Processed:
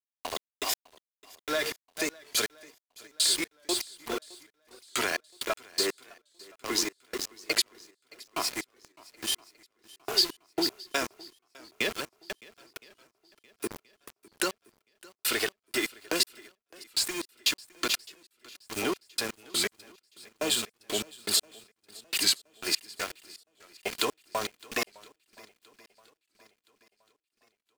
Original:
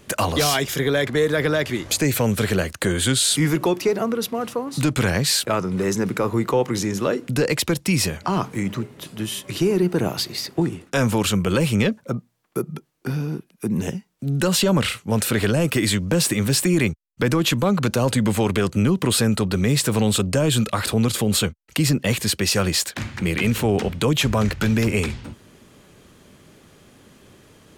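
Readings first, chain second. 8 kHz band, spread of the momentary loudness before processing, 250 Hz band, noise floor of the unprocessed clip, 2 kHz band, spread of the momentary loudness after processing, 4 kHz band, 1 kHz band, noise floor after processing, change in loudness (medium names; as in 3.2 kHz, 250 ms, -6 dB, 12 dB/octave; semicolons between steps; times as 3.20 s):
-7.5 dB, 8 LU, -19.5 dB, -55 dBFS, -8.5 dB, 17 LU, -4.5 dB, -11.0 dB, under -85 dBFS, -9.0 dB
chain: high-pass 520 Hz 12 dB/octave; comb 2.9 ms, depth 54%; delay 436 ms -8 dB; compression, threshold -23 dBFS, peak gain reduction 8 dB; peaking EQ 4.7 kHz +7.5 dB 0.29 oct; trance gate "..x..x......xx" 122 bpm; peaking EQ 860 Hz -3 dB 1.6 oct; small samples zeroed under -31.5 dBFS; shuffle delay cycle 1021 ms, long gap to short 1.5:1, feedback 39%, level -23 dB; warped record 45 rpm, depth 100 cents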